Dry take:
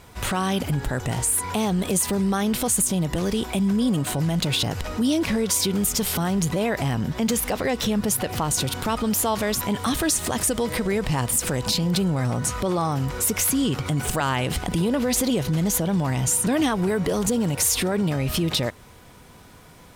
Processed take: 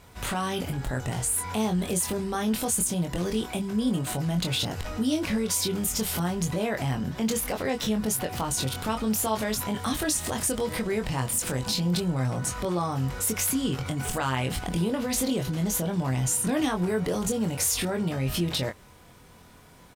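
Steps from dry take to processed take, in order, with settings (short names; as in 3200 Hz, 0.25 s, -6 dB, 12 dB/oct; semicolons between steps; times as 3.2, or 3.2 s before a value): doubler 23 ms -5 dB; gain -5.5 dB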